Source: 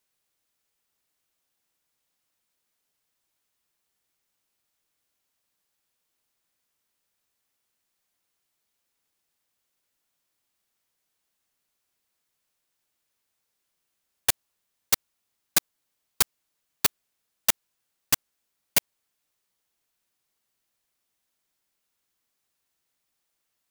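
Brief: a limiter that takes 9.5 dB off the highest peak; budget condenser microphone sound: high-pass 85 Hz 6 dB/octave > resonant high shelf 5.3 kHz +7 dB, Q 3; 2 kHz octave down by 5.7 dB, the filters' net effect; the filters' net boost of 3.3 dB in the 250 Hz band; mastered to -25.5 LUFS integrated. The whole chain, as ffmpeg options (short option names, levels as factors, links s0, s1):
-af "equalizer=f=250:t=o:g=5,equalizer=f=2000:t=o:g=-6,alimiter=limit=0.178:level=0:latency=1,highpass=f=85:p=1,highshelf=f=5300:t=q:w=3:g=7,volume=1.19"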